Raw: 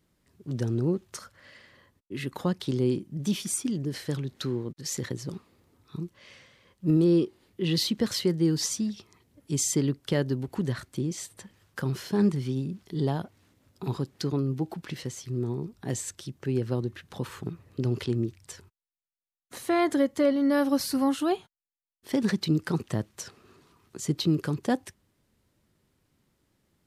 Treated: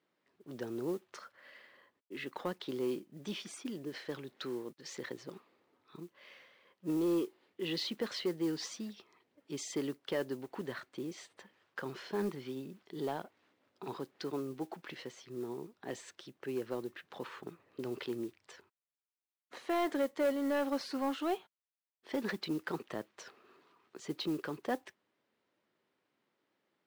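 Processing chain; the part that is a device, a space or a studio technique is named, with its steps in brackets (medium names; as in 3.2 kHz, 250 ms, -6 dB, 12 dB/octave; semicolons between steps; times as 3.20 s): carbon microphone (band-pass 390–3300 Hz; saturation -21.5 dBFS, distortion -16 dB; modulation noise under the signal 24 dB); trim -3 dB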